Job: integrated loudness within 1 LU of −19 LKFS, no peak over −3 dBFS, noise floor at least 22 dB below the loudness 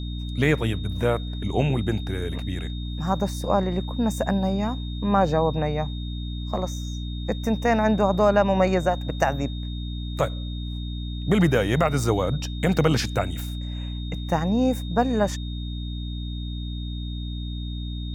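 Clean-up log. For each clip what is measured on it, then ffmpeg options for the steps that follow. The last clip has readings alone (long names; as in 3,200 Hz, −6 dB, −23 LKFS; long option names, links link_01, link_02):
mains hum 60 Hz; hum harmonics up to 300 Hz; level of the hum −28 dBFS; interfering tone 3,700 Hz; level of the tone −41 dBFS; integrated loudness −25.0 LKFS; sample peak −6.5 dBFS; target loudness −19.0 LKFS
→ -af "bandreject=frequency=60:width_type=h:width=6,bandreject=frequency=120:width_type=h:width=6,bandreject=frequency=180:width_type=h:width=6,bandreject=frequency=240:width_type=h:width=6,bandreject=frequency=300:width_type=h:width=6"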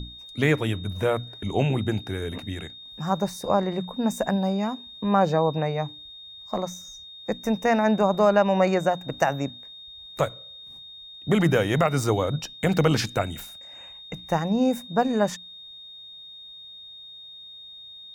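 mains hum none found; interfering tone 3,700 Hz; level of the tone −41 dBFS
→ -af "bandreject=frequency=3700:width=30"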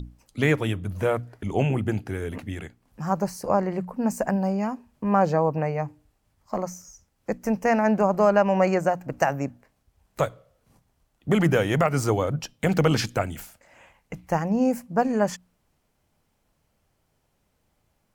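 interfering tone none found; integrated loudness −25.0 LKFS; sample peak −6.5 dBFS; target loudness −19.0 LKFS
→ -af "volume=6dB,alimiter=limit=-3dB:level=0:latency=1"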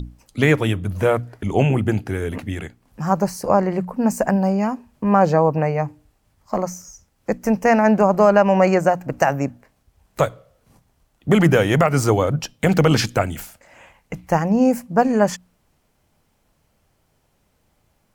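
integrated loudness −19.0 LKFS; sample peak −3.0 dBFS; background noise floor −65 dBFS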